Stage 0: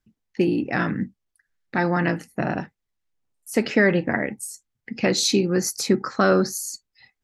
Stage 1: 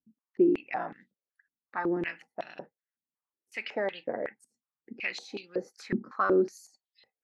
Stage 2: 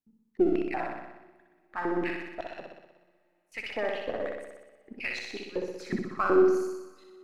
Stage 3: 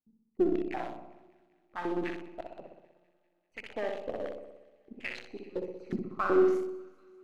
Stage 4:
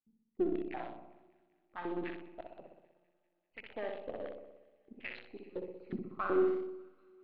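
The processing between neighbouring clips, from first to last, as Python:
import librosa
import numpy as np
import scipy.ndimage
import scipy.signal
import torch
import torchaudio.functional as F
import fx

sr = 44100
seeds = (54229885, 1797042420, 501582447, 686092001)

y1 = fx.filter_held_bandpass(x, sr, hz=5.4, low_hz=240.0, high_hz=3500.0)
y2 = np.where(y1 < 0.0, 10.0 ** (-3.0 / 20.0) * y1, y1)
y2 = fx.room_flutter(y2, sr, wall_m=10.6, rt60_s=1.0)
y2 = fx.rev_double_slope(y2, sr, seeds[0], early_s=0.33, late_s=3.8, knee_db=-17, drr_db=18.0)
y3 = fx.wiener(y2, sr, points=25)
y3 = fx.echo_wet_highpass(y3, sr, ms=197, feedback_pct=67, hz=1700.0, wet_db=-23.0)
y3 = F.gain(torch.from_numpy(y3), -2.5).numpy()
y4 = scipy.signal.sosfilt(scipy.signal.butter(6, 4000.0, 'lowpass', fs=sr, output='sos'), y3)
y4 = F.gain(torch.from_numpy(y4), -5.5).numpy()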